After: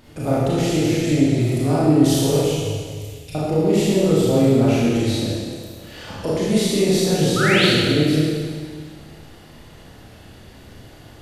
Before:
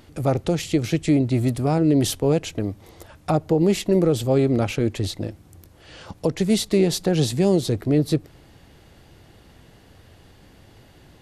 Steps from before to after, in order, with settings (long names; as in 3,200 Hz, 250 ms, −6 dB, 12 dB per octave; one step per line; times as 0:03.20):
0:07.36–0:07.65: sound drawn into the spectrogram rise 1,200–4,700 Hz −20 dBFS
in parallel at +1 dB: downward compressor, threshold −28 dBFS, peak gain reduction 14.5 dB
0:02.36–0:03.35: on the sum: elliptic band-stop filter 110–2,500 Hz
four-comb reverb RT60 1.9 s, combs from 26 ms, DRR −8.5 dB
level −8 dB